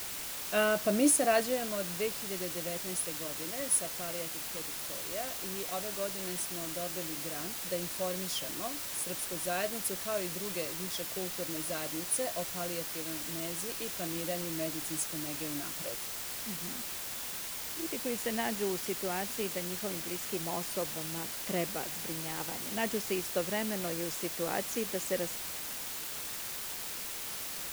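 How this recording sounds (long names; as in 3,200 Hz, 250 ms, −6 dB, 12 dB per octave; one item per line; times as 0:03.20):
a quantiser's noise floor 6 bits, dither triangular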